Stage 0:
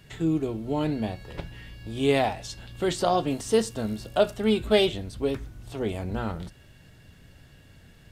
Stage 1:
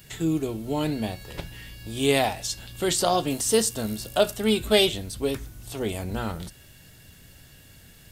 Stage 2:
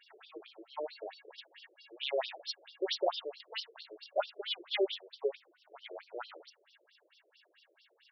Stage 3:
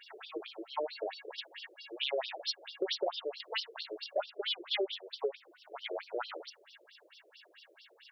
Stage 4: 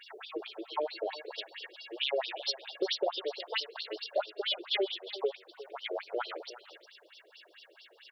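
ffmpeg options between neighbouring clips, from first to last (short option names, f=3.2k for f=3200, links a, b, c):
-af "aemphasis=mode=production:type=75kf"
-af "afftfilt=real='re*between(b*sr/1024,430*pow(4200/430,0.5+0.5*sin(2*PI*4.5*pts/sr))/1.41,430*pow(4200/430,0.5+0.5*sin(2*PI*4.5*pts/sr))*1.41)':imag='im*between(b*sr/1024,430*pow(4200/430,0.5+0.5*sin(2*PI*4.5*pts/sr))/1.41,430*pow(4200/430,0.5+0.5*sin(2*PI*4.5*pts/sr))*1.41)':win_size=1024:overlap=0.75,volume=-4.5dB"
-af "acompressor=threshold=-40dB:ratio=4,volume=8dB"
-af "aecho=1:1:357:0.168,volume=2.5dB"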